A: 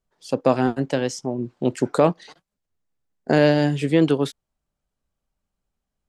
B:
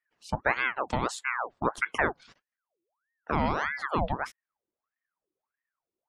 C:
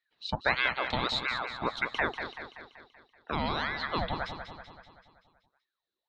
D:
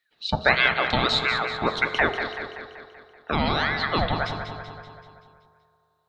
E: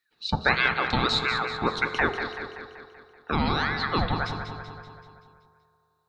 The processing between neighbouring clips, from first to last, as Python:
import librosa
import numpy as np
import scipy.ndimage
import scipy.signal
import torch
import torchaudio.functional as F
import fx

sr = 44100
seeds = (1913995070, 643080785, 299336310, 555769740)

y1 = fx.spec_gate(x, sr, threshold_db=-30, keep='strong')
y1 = fx.rider(y1, sr, range_db=4, speed_s=0.5)
y1 = fx.ring_lfo(y1, sr, carrier_hz=1100.0, swing_pct=70, hz=1.6)
y1 = F.gain(torch.from_numpy(y1), -6.0).numpy()
y2 = fx.rider(y1, sr, range_db=4, speed_s=2.0)
y2 = fx.lowpass_res(y2, sr, hz=3900.0, q=11.0)
y2 = fx.echo_feedback(y2, sr, ms=191, feedback_pct=55, wet_db=-8.5)
y2 = F.gain(torch.from_numpy(y2), -4.0).numpy()
y3 = fx.notch(y2, sr, hz=1000.0, q=8.2)
y3 = fx.rev_fdn(y3, sr, rt60_s=2.7, lf_ratio=0.8, hf_ratio=0.3, size_ms=14.0, drr_db=9.0)
y3 = F.gain(torch.from_numpy(y3), 8.0).numpy()
y4 = fx.graphic_eq_31(y3, sr, hz=(630, 2000, 3150), db=(-11, -5, -8))